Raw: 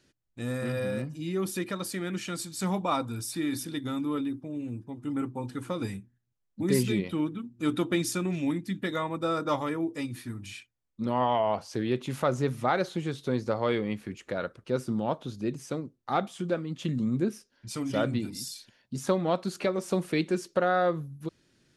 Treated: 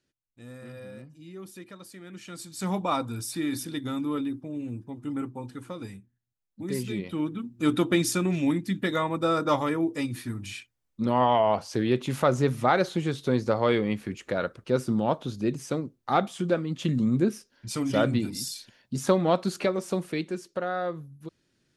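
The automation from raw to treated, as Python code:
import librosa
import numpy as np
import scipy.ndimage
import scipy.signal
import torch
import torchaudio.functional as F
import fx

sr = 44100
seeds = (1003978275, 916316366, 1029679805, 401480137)

y = fx.gain(x, sr, db=fx.line((2.03, -12.0), (2.74, 1.0), (4.97, 1.0), (5.83, -6.0), (6.82, -6.0), (7.48, 4.0), (19.49, 4.0), (20.38, -5.0)))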